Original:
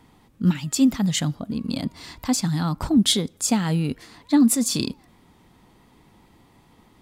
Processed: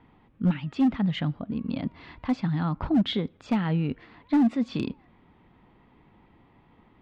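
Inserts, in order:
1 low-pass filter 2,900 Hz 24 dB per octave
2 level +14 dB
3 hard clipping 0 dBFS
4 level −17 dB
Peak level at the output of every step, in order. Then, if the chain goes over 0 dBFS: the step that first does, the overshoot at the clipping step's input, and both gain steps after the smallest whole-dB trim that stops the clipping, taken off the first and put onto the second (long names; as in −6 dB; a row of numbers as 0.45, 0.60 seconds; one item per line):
−8.5, +5.5, 0.0, −17.0 dBFS
step 2, 5.5 dB
step 2 +8 dB, step 4 −11 dB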